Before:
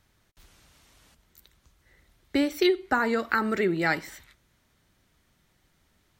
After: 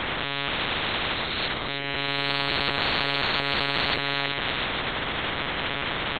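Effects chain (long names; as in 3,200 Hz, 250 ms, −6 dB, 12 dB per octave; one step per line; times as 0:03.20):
peak hold with a rise ahead of every peak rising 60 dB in 0.97 s
in parallel at +1 dB: downward compressor 6 to 1, threshold −30 dBFS, peak gain reduction 13 dB
on the sum: single-tap delay 319 ms −10.5 dB
reversed playback
upward compression, threshold −40 dBFS
reversed playback
comb filter 6.6 ms, depth 52%
wave folding −18 dBFS
one-pitch LPC vocoder at 8 kHz 140 Hz
every bin compressed towards the loudest bin 10 to 1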